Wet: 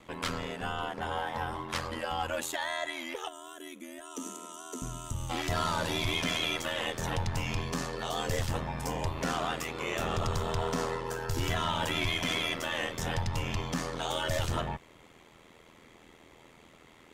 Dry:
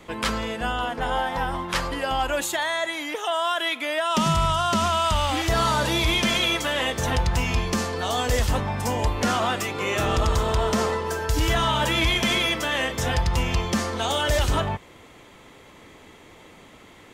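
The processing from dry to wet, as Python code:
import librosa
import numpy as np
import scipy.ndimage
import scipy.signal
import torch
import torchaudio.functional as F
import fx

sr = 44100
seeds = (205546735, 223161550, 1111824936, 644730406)

y = fx.spec_box(x, sr, start_s=3.28, length_s=2.02, low_hz=530.0, high_hz=5700.0, gain_db=-16)
y = y * np.sin(2.0 * np.pi * 41.0 * np.arange(len(y)) / sr)
y = fx.steep_highpass(y, sr, hz=280.0, slope=36, at=(4.01, 4.82))
y = fx.cheby_harmonics(y, sr, harmonics=(5, 6), levels_db=(-32, -39), full_scale_db=-14.0)
y = y * librosa.db_to_amplitude(-6.0)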